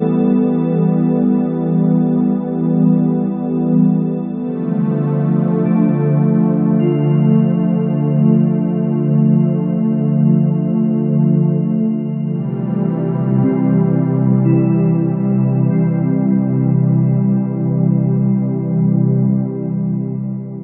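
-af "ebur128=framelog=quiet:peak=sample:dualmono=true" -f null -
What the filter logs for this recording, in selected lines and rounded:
Integrated loudness:
  I:         -12.1 LUFS
  Threshold: -22.1 LUFS
Loudness range:
  LRA:         1.8 LU
  Threshold: -32.0 LUFS
  LRA low:   -13.0 LUFS
  LRA high:  -11.1 LUFS
Sample peak:
  Peak:       -1.2 dBFS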